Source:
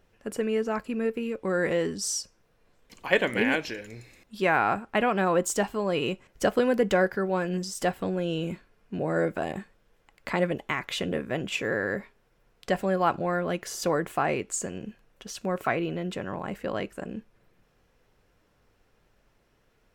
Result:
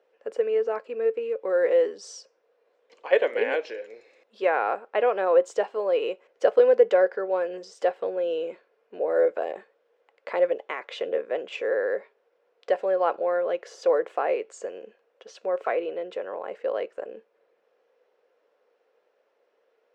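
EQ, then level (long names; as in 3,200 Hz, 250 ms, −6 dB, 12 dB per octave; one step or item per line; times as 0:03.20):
four-pole ladder high-pass 440 Hz, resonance 65%
high-frequency loss of the air 140 metres
+7.5 dB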